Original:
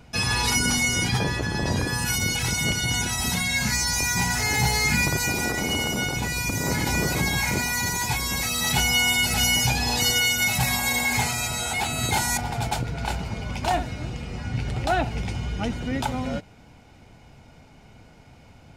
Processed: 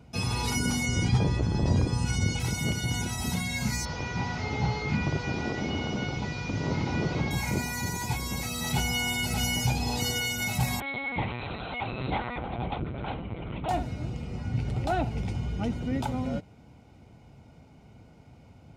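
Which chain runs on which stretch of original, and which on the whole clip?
0.86–2.4 LPF 8500 Hz 24 dB/oct + low shelf 71 Hz +12 dB
3.85–7.31 delta modulation 32 kbps, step -32.5 dBFS + notches 60/120/180/240/300/360/420/480/540 Hz
10.8–13.69 HPF 66 Hz 24 dB/oct + LPC vocoder at 8 kHz pitch kept
whole clip: HPF 58 Hz; tilt shelf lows +4.5 dB, about 730 Hz; notch 1700 Hz, Q 9.2; gain -5 dB

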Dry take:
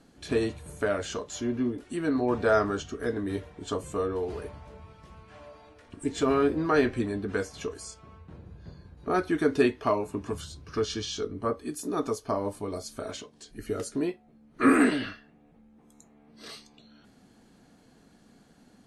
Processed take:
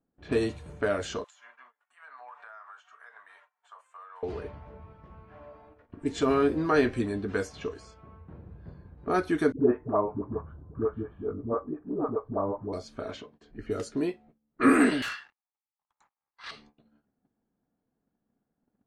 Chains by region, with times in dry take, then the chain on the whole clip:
1.24–4.23 inverse Chebyshev high-pass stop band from 360 Hz, stop band 50 dB + resonant high shelf 6500 Hz +10.5 dB, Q 1.5 + compressor 12:1, threshold -42 dBFS
9.52–12.73 inverse Chebyshev low-pass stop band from 5200 Hz, stop band 70 dB + dispersion highs, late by 90 ms, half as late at 420 Hz
15.02–16.51 steep high-pass 830 Hz 72 dB/oct + sample leveller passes 3
whole clip: gate -53 dBFS, range -22 dB; low-pass opened by the level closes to 1300 Hz, open at -25 dBFS

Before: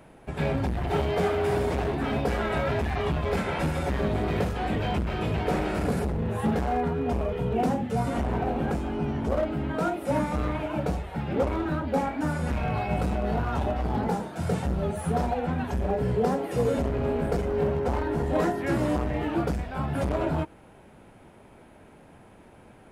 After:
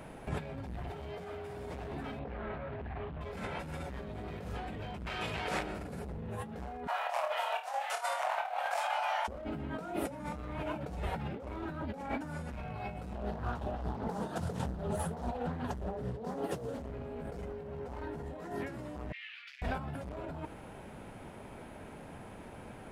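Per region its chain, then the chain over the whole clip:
2.19–3.21 air absorption 420 m + Doppler distortion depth 0.31 ms
5.06–5.63 LPF 11000 Hz + tilt shelf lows -8 dB, about 710 Hz + negative-ratio compressor -31 dBFS, ratio -0.5
6.87–9.28 steep high-pass 610 Hz 72 dB/oct + negative-ratio compressor -37 dBFS, ratio -0.5 + flutter echo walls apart 4.7 m, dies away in 0.28 s
13.13–16.81 bell 2200 Hz -13.5 dB 0.24 oct + tremolo triangle 5 Hz, depth 65% + Doppler distortion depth 0.58 ms
19.12–19.62 steep high-pass 2100 Hz + air absorption 300 m
whole clip: bell 340 Hz -2.5 dB 0.34 oct; negative-ratio compressor -36 dBFS, ratio -1; gain -3 dB

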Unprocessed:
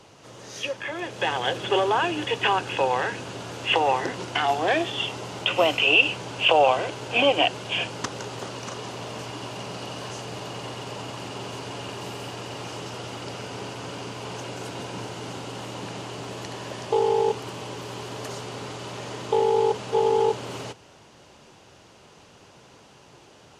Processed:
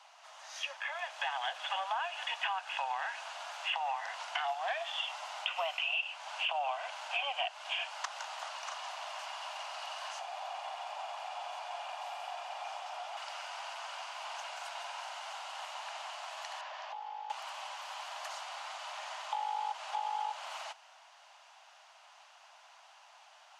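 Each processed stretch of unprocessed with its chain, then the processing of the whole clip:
10.19–13.17 tilt shelf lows +5.5 dB, about 690 Hz + small resonant body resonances 330/740/2400/3400 Hz, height 8 dB, ringing for 30 ms
16.61–17.3 LPF 6400 Hz 24 dB/oct + high shelf 4200 Hz -9 dB + compressor 5:1, threshold -30 dBFS
whole clip: steep high-pass 650 Hz 72 dB/oct; high shelf 5800 Hz -8.5 dB; compressor 4:1, threshold -30 dBFS; gain -3 dB

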